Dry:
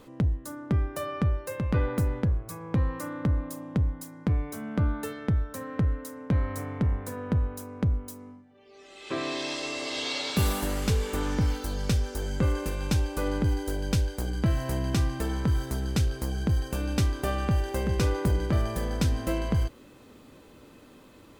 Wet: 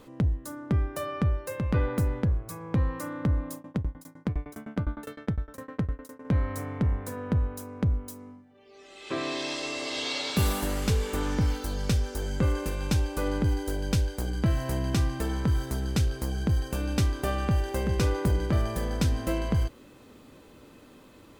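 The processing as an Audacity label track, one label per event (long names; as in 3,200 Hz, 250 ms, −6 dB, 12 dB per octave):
3.540000	6.250000	shaped tremolo saw down 9.8 Hz, depth 100%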